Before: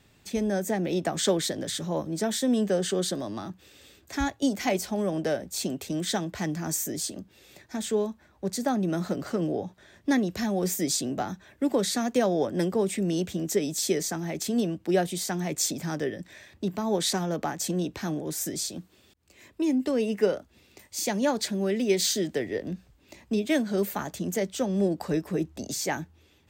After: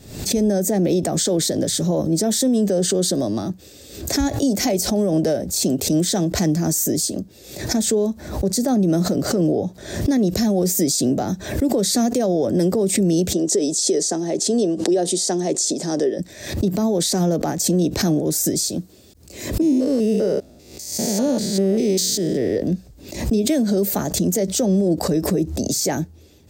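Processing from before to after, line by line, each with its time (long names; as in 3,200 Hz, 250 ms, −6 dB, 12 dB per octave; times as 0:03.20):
0:13.33–0:16.19: loudspeaker in its box 310–9,400 Hz, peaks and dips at 380 Hz +4 dB, 1,400 Hz −5 dB, 2,300 Hz −8 dB
0:19.61–0:22.56: spectrum averaged block by block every 200 ms
whole clip: flat-topped bell 1,700 Hz −10.5 dB 2.3 octaves; boost into a limiter +23 dB; background raised ahead of every attack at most 84 dB per second; level −10.5 dB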